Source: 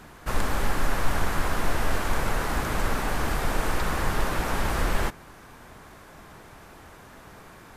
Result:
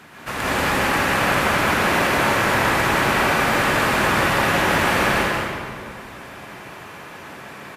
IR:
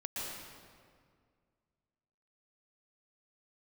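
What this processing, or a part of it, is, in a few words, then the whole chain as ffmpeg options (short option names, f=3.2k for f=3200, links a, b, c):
PA in a hall: -filter_complex "[0:a]highpass=120,equalizer=f=2.4k:t=o:w=1.4:g=7,aecho=1:1:184:0.562[a];[1:a]atrim=start_sample=2205[b];[a][b]afir=irnorm=-1:irlink=0,volume=5dB"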